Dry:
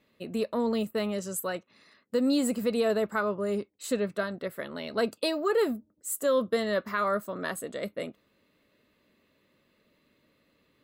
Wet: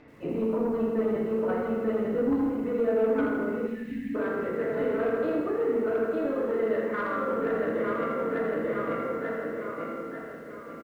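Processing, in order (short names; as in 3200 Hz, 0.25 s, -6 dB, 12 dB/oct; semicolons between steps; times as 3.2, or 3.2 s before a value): dynamic EQ 340 Hz, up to +6 dB, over -44 dBFS, Q 2.8; feedback echo 0.89 s, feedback 43%, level -5.5 dB; chopper 8.8 Hz, depth 60%, duty 75%; compressor 16:1, threshold -35 dBFS, peak gain reduction 16.5 dB; LPF 2100 Hz 24 dB/oct; upward compressor, threshold -55 dBFS; FDN reverb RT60 1.6 s, low-frequency decay 1.1×, high-frequency decay 0.6×, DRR -9 dB; soft clip -21.5 dBFS, distortion -17 dB; 2.37–4.77 de-hum 81.35 Hz, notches 23; 3.68–4.15 spectral delete 280–1600 Hz; lo-fi delay 81 ms, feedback 55%, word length 10-bit, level -7.5 dB; gain +2 dB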